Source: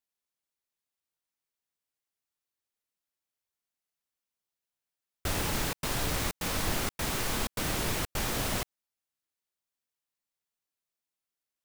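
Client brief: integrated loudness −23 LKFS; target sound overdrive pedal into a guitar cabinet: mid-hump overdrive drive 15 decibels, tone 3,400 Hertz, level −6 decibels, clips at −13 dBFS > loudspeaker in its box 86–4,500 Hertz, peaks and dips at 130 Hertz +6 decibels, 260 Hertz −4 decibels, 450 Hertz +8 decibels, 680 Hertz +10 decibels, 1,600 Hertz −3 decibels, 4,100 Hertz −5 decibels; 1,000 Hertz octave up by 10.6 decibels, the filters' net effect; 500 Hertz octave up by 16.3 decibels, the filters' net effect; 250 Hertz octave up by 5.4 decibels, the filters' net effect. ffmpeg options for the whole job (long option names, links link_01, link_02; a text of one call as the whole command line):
ffmpeg -i in.wav -filter_complex "[0:a]equalizer=frequency=250:width_type=o:gain=4.5,equalizer=frequency=500:width_type=o:gain=9,equalizer=frequency=1000:width_type=o:gain=5.5,asplit=2[link_01][link_02];[link_02]highpass=frequency=720:poles=1,volume=15dB,asoftclip=type=tanh:threshold=-13dB[link_03];[link_01][link_03]amix=inputs=2:normalize=0,lowpass=frequency=3400:poles=1,volume=-6dB,highpass=86,equalizer=frequency=130:width_type=q:width=4:gain=6,equalizer=frequency=260:width_type=q:width=4:gain=-4,equalizer=frequency=450:width_type=q:width=4:gain=8,equalizer=frequency=680:width_type=q:width=4:gain=10,equalizer=frequency=1600:width_type=q:width=4:gain=-3,equalizer=frequency=4100:width_type=q:width=4:gain=-5,lowpass=frequency=4500:width=0.5412,lowpass=frequency=4500:width=1.3066,volume=-2dB" out.wav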